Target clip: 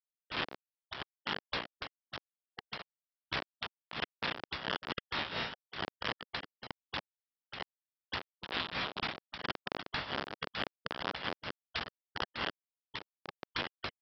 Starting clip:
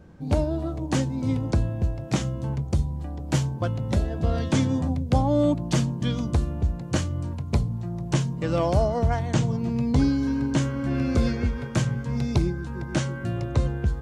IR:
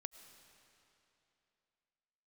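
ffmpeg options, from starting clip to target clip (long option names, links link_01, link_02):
-filter_complex "[0:a]afftfilt=real='real(if(lt(b,272),68*(eq(floor(b/68),0)*1+eq(floor(b/68),1)*3+eq(floor(b/68),2)*0+eq(floor(b/68),3)*2)+mod(b,68),b),0)':imag='imag(if(lt(b,272),68*(eq(floor(b/68),0)*1+eq(floor(b/68),1)*3+eq(floor(b/68),2)*0+eq(floor(b/68),3)*2)+mod(b,68),b),0)':win_size=2048:overlap=0.75,acrossover=split=490[link_01][link_02];[link_01]asoftclip=type=tanh:threshold=-39dB[link_03];[link_02]aemphasis=mode=reproduction:type=riaa[link_04];[link_03][link_04]amix=inputs=2:normalize=0,aeval=exprs='val(0)+0.00316*(sin(2*PI*50*n/s)+sin(2*PI*2*50*n/s)/2+sin(2*PI*3*50*n/s)/3+sin(2*PI*4*50*n/s)/4+sin(2*PI*5*50*n/s)/5)':channel_layout=same,aresample=11025,acrusher=bits=3:mix=0:aa=0.000001,aresample=44100,bandpass=frequency=430:width_type=q:width=0.72:csg=0,acompressor=threshold=-37dB:ratio=8,afftfilt=real='re*lt(hypot(re,im),0.02)':imag='im*lt(hypot(re,im),0.02)':win_size=1024:overlap=0.75,acompressor=mode=upward:threshold=-53dB:ratio=2.5,tremolo=f=4.4:d=0.73,volume=12.5dB"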